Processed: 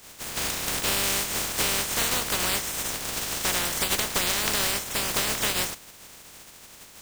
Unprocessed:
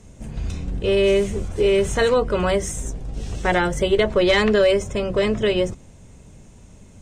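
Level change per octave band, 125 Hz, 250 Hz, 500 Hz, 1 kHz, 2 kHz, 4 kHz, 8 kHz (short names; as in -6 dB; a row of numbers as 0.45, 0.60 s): -11.0, -13.0, -17.5, -4.5, -3.0, +2.0, +10.0 dB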